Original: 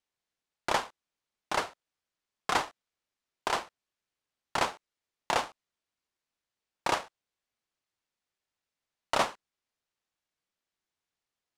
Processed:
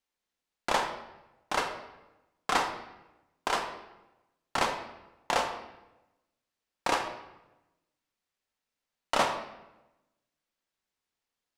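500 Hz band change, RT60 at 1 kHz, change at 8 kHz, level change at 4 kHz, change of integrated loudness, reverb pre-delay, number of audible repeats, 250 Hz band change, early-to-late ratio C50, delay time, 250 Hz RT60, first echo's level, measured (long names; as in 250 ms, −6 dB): +1.5 dB, 0.95 s, +0.5 dB, +1.0 dB, +1.0 dB, 3 ms, no echo audible, +2.0 dB, 7.0 dB, no echo audible, 1.1 s, no echo audible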